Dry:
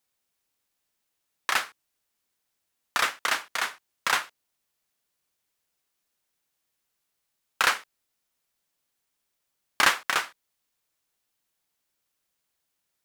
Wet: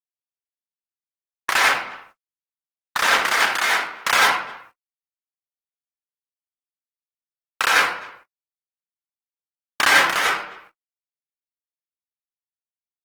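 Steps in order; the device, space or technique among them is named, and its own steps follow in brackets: speakerphone in a meeting room (reverberation RT60 0.65 s, pre-delay 83 ms, DRR -6 dB; speakerphone echo 260 ms, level -22 dB; level rider gain up to 13 dB; gate -45 dBFS, range -49 dB; trim -2 dB; Opus 16 kbps 48 kHz)

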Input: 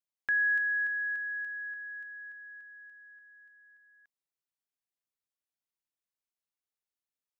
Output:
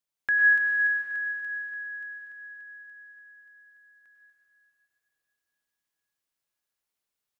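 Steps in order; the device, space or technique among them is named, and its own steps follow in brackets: cave (delay 241 ms -10.5 dB; reverberation RT60 3.1 s, pre-delay 91 ms, DRR -1 dB); trim +4 dB

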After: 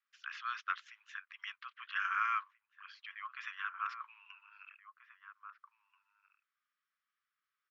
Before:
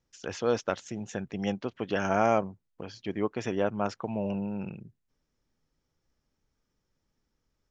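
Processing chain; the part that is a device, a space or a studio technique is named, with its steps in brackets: steep high-pass 1.1 kHz 96 dB/octave; shout across a valley (distance through air 370 m; echo from a far wall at 280 m, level -8 dB); trim +3 dB

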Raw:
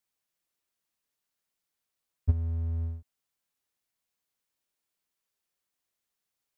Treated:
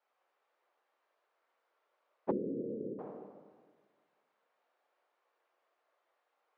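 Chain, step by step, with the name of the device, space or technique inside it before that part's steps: whispering ghost (whisper effect; high-pass 470 Hz 24 dB/octave; reverberation RT60 1.6 s, pre-delay 8 ms, DRR -1.5 dB); Bessel low-pass 930 Hz, order 2; 2.31–2.99 s: steep low-pass 510 Hz 72 dB/octave; trim +16.5 dB

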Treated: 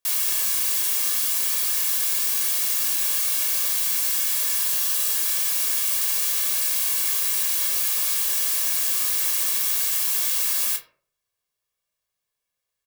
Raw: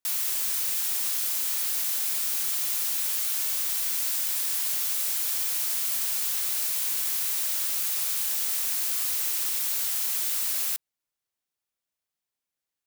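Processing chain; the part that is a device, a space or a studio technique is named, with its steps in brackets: microphone above a desk (comb 1.8 ms, depth 59%; reverberation RT60 0.45 s, pre-delay 13 ms, DRR 2.5 dB); 4.62–5.18 s: band-stop 2.2 kHz, Q 12; trim +2.5 dB

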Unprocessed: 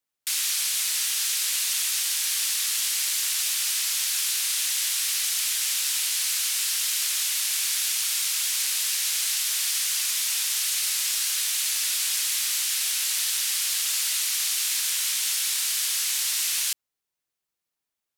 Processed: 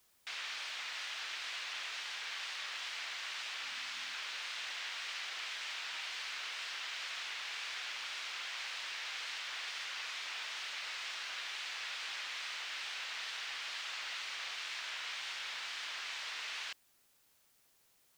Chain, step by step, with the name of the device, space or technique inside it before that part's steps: cassette deck with a dirty head (tape spacing loss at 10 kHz 43 dB; wow and flutter; white noise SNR 28 dB); 3.64–4.15 s: resonant low shelf 320 Hz +7 dB, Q 3; trim +3 dB

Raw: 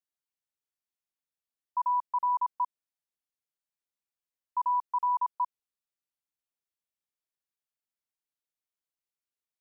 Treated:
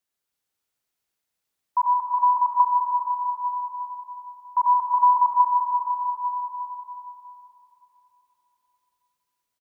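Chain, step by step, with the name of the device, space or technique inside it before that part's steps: cave (delay 345 ms -8.5 dB; reverberation RT60 4.0 s, pre-delay 61 ms, DRR -0.5 dB); 1.84–2.60 s: Bessel high-pass 840 Hz, order 2; trim +8 dB

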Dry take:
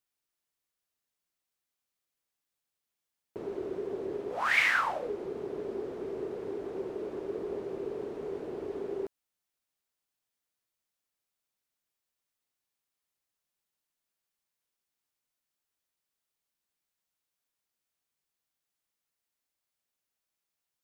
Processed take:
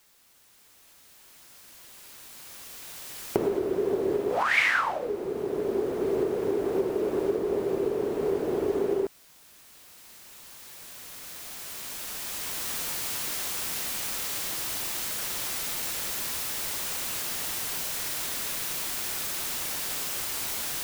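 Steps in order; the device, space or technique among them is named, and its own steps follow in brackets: cheap recorder with automatic gain (white noise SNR 25 dB; recorder AGC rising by 6.8 dB/s); trim +2.5 dB

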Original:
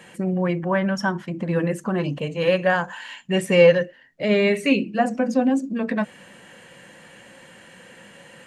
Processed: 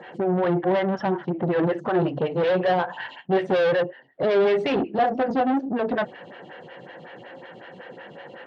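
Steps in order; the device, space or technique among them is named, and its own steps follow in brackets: vibe pedal into a guitar amplifier (lamp-driven phase shifter 5.4 Hz; valve stage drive 28 dB, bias 0.35; cabinet simulation 100–3700 Hz, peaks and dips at 140 Hz +5 dB, 210 Hz -6 dB, 380 Hz +5 dB, 750 Hz +6 dB, 1.1 kHz -3 dB, 2.4 kHz -7 dB); trim +8.5 dB

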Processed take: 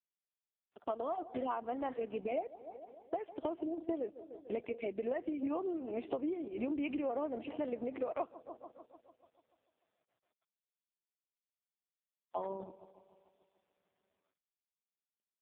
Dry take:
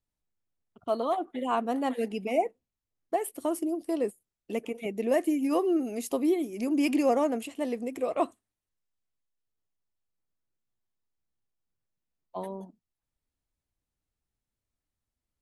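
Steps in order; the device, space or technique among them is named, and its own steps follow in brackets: 4.04–4.62 s: band-stop 5 kHz, Q 7.1; feedback echo behind a low-pass 147 ms, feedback 64%, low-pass 1.2 kHz, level -20 dB; spectral noise reduction 27 dB; 7.14–7.54 s: dynamic bell 280 Hz, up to +5 dB, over -37 dBFS, Q 0.91; voicemail (band-pass 330–3100 Hz; compression 10:1, threshold -38 dBFS, peak gain reduction 17.5 dB; trim +5 dB; AMR-NB 4.75 kbps 8 kHz)

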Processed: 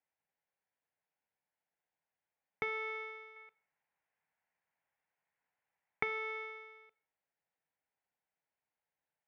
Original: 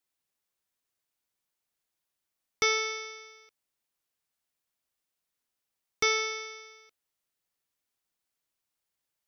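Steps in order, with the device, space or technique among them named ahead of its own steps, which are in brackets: bass amplifier (compression 5:1, threshold -31 dBFS, peak gain reduction 9 dB; cabinet simulation 88–2200 Hz, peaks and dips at 110 Hz -9 dB, 230 Hz -8 dB, 350 Hz -9 dB, 820 Hz +4 dB, 1.2 kHz -9 dB); 3.36–6.03 s: graphic EQ 125/1000/2000 Hz +4/+5/+6 dB; Schroeder reverb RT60 0.4 s, combs from 33 ms, DRR 18 dB; trim +1 dB

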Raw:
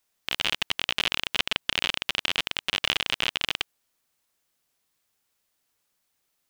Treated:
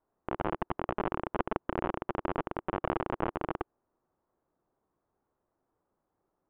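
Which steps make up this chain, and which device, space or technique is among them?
under water (low-pass 1.1 kHz 24 dB/octave; peaking EQ 350 Hz +6 dB 0.49 oct); trim +5.5 dB

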